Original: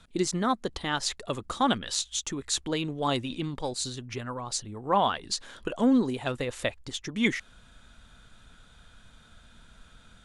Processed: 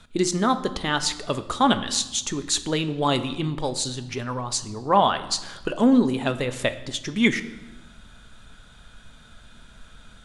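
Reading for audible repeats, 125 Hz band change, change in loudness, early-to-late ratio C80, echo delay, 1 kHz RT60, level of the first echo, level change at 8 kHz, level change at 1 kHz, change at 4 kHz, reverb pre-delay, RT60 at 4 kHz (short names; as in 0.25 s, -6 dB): none, +6.0 dB, +5.5 dB, 16.0 dB, none, 1.1 s, none, +5.5 dB, +5.5 dB, +5.5 dB, 3 ms, 0.90 s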